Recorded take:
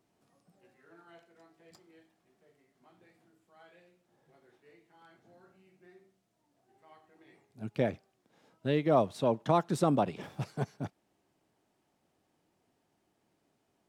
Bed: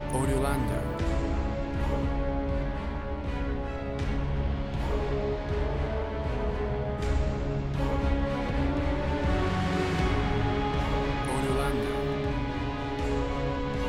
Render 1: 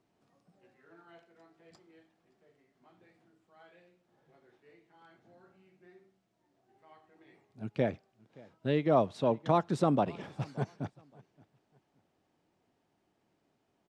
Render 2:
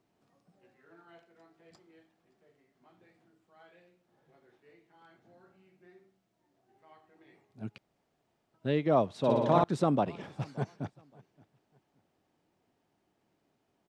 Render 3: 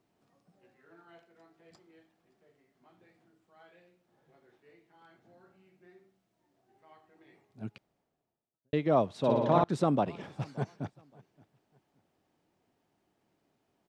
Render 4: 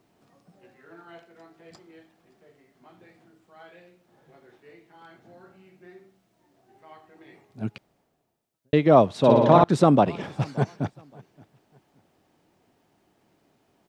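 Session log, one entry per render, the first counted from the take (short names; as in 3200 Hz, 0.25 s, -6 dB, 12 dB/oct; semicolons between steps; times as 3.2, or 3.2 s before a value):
air absorption 64 m; feedback echo 0.573 s, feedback 29%, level -24 dB
7.78–8.54 room tone; 9.18–9.64 flutter echo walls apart 10.2 m, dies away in 1.5 s
7.65–8.73 studio fade out; 9.28–9.69 air absorption 60 m
gain +10 dB; limiter -3 dBFS, peak gain reduction 2.5 dB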